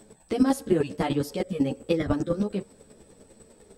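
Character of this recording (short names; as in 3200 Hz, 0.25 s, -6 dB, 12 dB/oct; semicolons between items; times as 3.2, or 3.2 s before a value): chopped level 10 Hz, depth 60%, duty 15%; a shimmering, thickened sound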